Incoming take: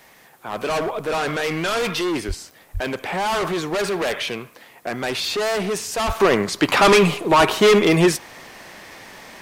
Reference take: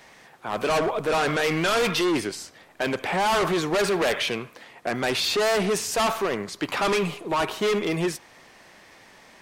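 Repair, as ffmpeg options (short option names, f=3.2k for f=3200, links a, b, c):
-filter_complex "[0:a]adeclick=t=4,asplit=3[a][b][c];[a]afade=t=out:st=2.27:d=0.02[d];[b]highpass=f=140:w=0.5412,highpass=f=140:w=1.3066,afade=t=in:st=2.27:d=0.02,afade=t=out:st=2.39:d=0.02[e];[c]afade=t=in:st=2.39:d=0.02[f];[d][e][f]amix=inputs=3:normalize=0,asplit=3[g][h][i];[g]afade=t=out:st=2.73:d=0.02[j];[h]highpass=f=140:w=0.5412,highpass=f=140:w=1.3066,afade=t=in:st=2.73:d=0.02,afade=t=out:st=2.85:d=0.02[k];[i]afade=t=in:st=2.85:d=0.02[l];[j][k][l]amix=inputs=3:normalize=0,asplit=3[m][n][o];[m]afade=t=out:st=6.06:d=0.02[p];[n]highpass=f=140:w=0.5412,highpass=f=140:w=1.3066,afade=t=in:st=6.06:d=0.02,afade=t=out:st=6.18:d=0.02[q];[o]afade=t=in:st=6.18:d=0.02[r];[p][q][r]amix=inputs=3:normalize=0,agate=range=-21dB:threshold=-39dB,asetnsamples=n=441:p=0,asendcmd='6.2 volume volume -10dB',volume=0dB"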